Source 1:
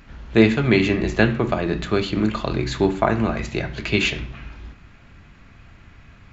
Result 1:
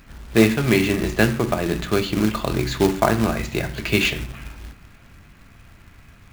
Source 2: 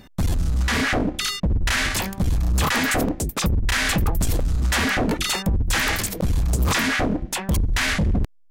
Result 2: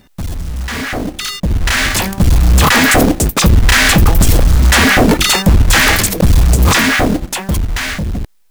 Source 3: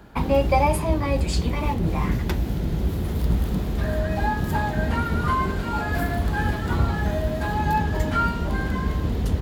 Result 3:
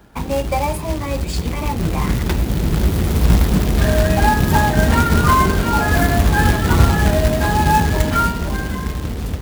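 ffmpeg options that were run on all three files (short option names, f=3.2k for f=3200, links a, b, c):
-af "acrusher=bits=3:mode=log:mix=0:aa=0.000001,dynaudnorm=f=320:g=11:m=14dB,volume=-1dB"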